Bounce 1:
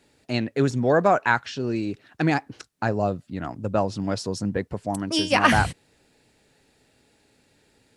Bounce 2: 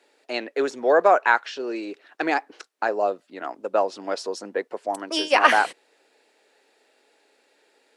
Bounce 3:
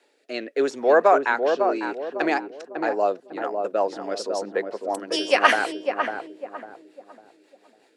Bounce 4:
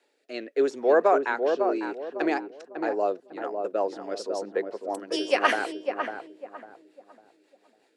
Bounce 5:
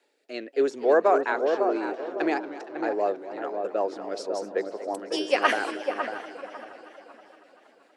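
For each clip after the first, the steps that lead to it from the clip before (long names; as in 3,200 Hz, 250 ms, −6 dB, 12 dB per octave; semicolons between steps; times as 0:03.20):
high-pass filter 380 Hz 24 dB per octave; high-shelf EQ 4,900 Hz −8.5 dB; level +3 dB
rotating-speaker cabinet horn 0.85 Hz, later 5.5 Hz, at 0:02.82; feedback echo with a low-pass in the loop 551 ms, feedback 40%, low-pass 840 Hz, level −3.5 dB; level +2 dB
dynamic equaliser 370 Hz, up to +6 dB, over −33 dBFS, Q 1.4; level −6 dB
feedback echo with a swinging delay time 236 ms, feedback 70%, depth 184 cents, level −15 dB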